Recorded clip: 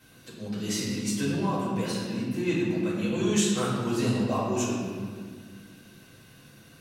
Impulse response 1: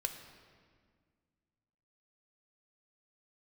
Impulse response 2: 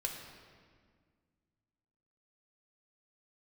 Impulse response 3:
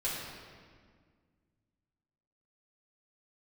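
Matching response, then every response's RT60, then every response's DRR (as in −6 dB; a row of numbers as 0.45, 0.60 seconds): 3; 1.8, 1.8, 1.8 seconds; 5.5, 1.0, −8.5 decibels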